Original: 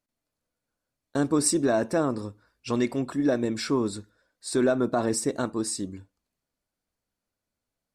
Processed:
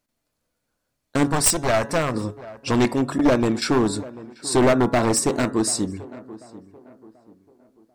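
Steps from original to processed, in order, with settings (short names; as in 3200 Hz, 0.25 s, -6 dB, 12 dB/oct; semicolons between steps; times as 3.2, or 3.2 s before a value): one-sided fold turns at -21 dBFS; 1.27–2.14 bell 300 Hz -13 dB 0.92 oct; 3.18–3.62 gate with hold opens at -19 dBFS; de-hum 140.1 Hz, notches 14; tape echo 0.738 s, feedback 42%, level -16.5 dB, low-pass 1300 Hz; gain +8 dB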